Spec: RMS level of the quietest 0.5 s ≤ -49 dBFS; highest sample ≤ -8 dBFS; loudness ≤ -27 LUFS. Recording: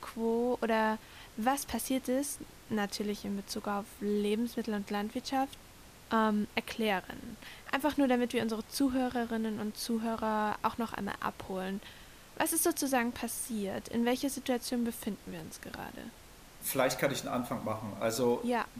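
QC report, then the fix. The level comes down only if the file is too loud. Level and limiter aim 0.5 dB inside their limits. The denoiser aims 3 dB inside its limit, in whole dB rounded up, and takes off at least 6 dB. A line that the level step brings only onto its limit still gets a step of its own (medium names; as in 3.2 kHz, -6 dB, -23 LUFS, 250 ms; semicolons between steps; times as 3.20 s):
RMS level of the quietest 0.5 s -54 dBFS: pass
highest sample -15.0 dBFS: pass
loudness -33.5 LUFS: pass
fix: none needed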